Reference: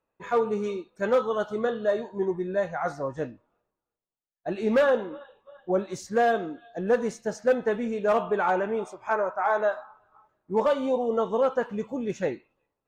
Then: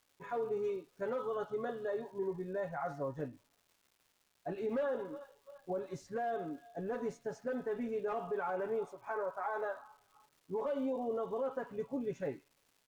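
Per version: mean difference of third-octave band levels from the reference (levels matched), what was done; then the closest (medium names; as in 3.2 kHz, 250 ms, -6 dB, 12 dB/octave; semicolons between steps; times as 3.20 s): 4.0 dB: treble shelf 2.5 kHz -11 dB; comb 7.2 ms, depth 74%; peak limiter -20.5 dBFS, peak gain reduction 9.5 dB; crackle 510 per s -50 dBFS; trim -8.5 dB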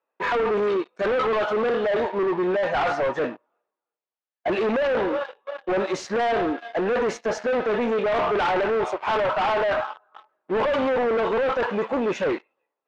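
7.0 dB: waveshaping leveller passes 3; high-pass 450 Hz 12 dB/octave; overload inside the chain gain 28 dB; low-pass 3 kHz 12 dB/octave; trim +7.5 dB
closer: first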